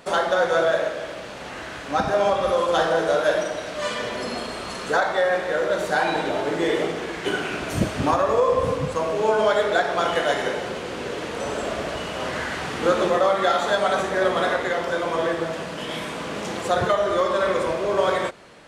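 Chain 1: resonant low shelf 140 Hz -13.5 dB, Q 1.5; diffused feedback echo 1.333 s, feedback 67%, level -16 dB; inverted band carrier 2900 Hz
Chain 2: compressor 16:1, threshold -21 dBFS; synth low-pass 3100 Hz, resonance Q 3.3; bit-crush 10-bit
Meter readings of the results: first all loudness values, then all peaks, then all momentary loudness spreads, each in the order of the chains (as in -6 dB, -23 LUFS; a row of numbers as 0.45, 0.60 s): -19.5, -25.0 LUFS; -6.0, -10.0 dBFS; 10, 4 LU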